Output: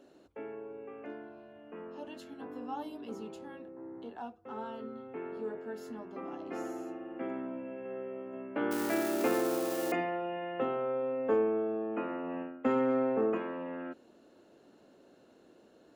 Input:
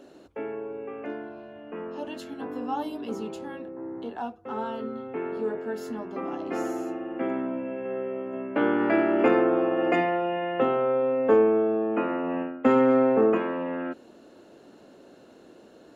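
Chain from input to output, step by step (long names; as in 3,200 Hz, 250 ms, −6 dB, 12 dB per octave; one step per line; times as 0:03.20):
0:08.71–0:09.92: spike at every zero crossing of −19.5 dBFS
level −9 dB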